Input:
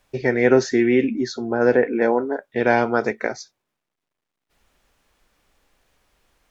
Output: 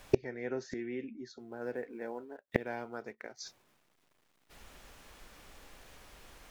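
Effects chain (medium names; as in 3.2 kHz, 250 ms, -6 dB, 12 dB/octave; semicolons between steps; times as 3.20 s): 1.39–3.39 s: companding laws mixed up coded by A; inverted gate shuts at -21 dBFS, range -32 dB; trim +10 dB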